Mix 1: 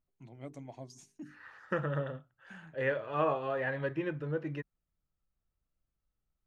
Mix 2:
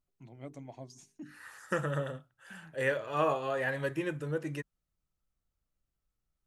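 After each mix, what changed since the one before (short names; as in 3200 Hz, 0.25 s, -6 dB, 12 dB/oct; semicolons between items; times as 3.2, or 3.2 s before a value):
second voice: remove air absorption 270 m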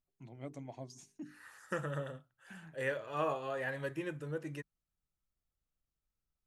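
second voice -5.5 dB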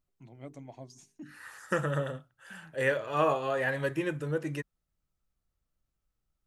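second voice +8.0 dB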